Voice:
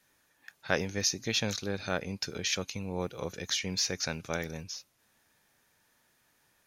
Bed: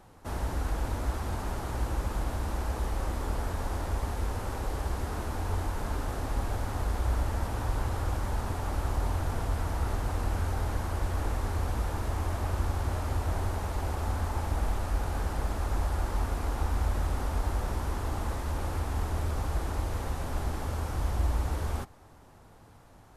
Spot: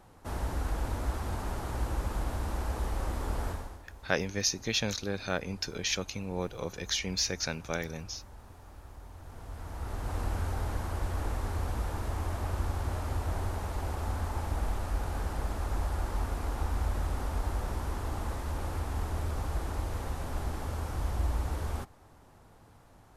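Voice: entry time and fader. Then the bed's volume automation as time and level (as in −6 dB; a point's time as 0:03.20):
3.40 s, 0.0 dB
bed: 0:03.50 −1.5 dB
0:03.84 −19 dB
0:09.11 −19 dB
0:10.17 −2.5 dB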